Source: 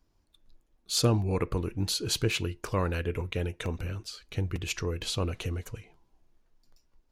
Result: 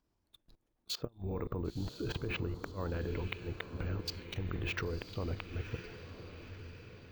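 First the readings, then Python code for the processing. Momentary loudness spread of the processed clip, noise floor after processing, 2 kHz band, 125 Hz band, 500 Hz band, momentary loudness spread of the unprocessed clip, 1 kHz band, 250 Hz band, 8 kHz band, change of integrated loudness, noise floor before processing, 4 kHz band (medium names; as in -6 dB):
12 LU, -80 dBFS, -4.5 dB, -8.0 dB, -8.0 dB, 11 LU, -8.5 dB, -7.5 dB, -18.5 dB, -9.0 dB, -70 dBFS, -11.0 dB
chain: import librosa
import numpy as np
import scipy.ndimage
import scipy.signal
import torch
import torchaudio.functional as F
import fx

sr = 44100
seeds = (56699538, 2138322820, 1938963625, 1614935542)

y = fx.octave_divider(x, sr, octaves=2, level_db=-4.0)
y = fx.env_lowpass_down(y, sr, base_hz=1400.0, full_db=-26.5)
y = fx.highpass(y, sr, hz=70.0, slope=6)
y = fx.high_shelf(y, sr, hz=4000.0, db=-4.5)
y = fx.level_steps(y, sr, step_db=22)
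y = fx.gate_flip(y, sr, shuts_db=-30.0, range_db=-30)
y = fx.echo_diffused(y, sr, ms=1014, feedback_pct=50, wet_db=-10.0)
y = np.repeat(y[::2], 2)[:len(y)]
y = y * 10.0 ** (8.0 / 20.0)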